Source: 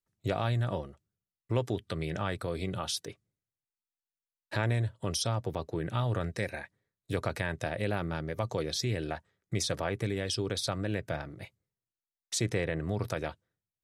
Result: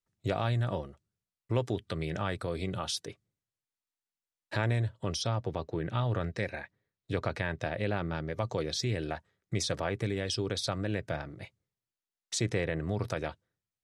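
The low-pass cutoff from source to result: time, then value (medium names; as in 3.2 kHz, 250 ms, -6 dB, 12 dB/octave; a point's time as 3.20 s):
4.65 s 9.6 kHz
5.28 s 5.2 kHz
8.00 s 5.2 kHz
8.83 s 8.5 kHz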